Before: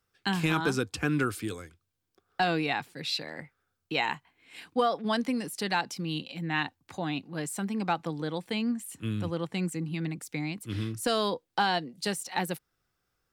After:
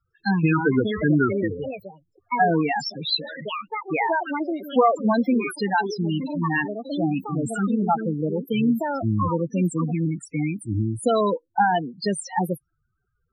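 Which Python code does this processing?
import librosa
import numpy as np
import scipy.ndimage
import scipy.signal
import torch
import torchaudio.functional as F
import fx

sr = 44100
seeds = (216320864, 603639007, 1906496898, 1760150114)

y = fx.bass_treble(x, sr, bass_db=0, treble_db=3)
y = fx.echo_pitch(y, sr, ms=524, semitones=5, count=2, db_per_echo=-6.0)
y = fx.spec_topn(y, sr, count=8)
y = F.gain(torch.from_numpy(y), 9.0).numpy()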